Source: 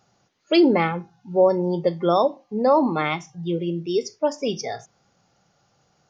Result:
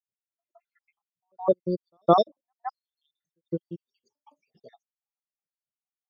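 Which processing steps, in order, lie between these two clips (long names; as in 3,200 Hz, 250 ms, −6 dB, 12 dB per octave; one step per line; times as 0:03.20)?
time-frequency cells dropped at random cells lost 79%
echo ahead of the sound 164 ms −19.5 dB
expander for the loud parts 2.5 to 1, over −45 dBFS
level +5 dB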